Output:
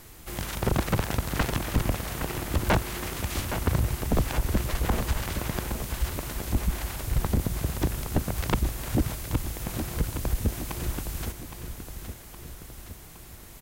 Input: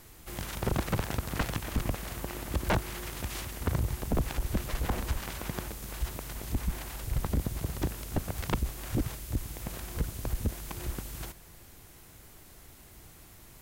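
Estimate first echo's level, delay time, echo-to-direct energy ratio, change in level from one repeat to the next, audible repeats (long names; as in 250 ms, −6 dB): −9.0 dB, 816 ms, −7.5 dB, −4.5 dB, 3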